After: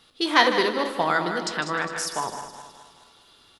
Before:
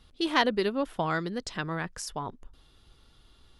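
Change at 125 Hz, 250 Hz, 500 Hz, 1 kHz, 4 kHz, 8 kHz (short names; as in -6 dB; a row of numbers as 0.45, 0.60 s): -2.5, +2.0, +5.0, +8.0, +8.0, +9.0 dB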